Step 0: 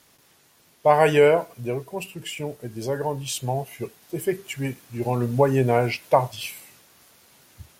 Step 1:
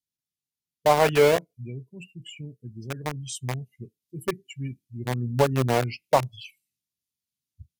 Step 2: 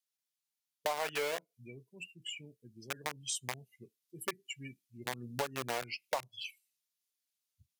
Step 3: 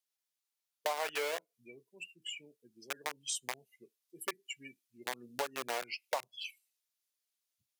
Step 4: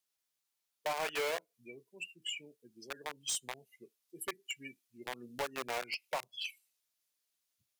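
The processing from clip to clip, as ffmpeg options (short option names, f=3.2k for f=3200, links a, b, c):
-filter_complex "[0:a]afftdn=nr=31:nf=-31,acrossover=split=280|2600[a][b][c];[b]aeval=exprs='val(0)*gte(abs(val(0)),0.112)':c=same[d];[a][d][c]amix=inputs=3:normalize=0,volume=-2dB"
-af "highpass=f=1.2k:p=1,acompressor=threshold=-34dB:ratio=5,aeval=exprs='0.106*(cos(1*acos(clip(val(0)/0.106,-1,1)))-cos(1*PI/2))+0.00168*(cos(4*acos(clip(val(0)/0.106,-1,1)))-cos(4*PI/2))':c=same,volume=1.5dB"
-af "highpass=340"
-af "volume=33dB,asoftclip=hard,volume=-33dB,volume=3dB"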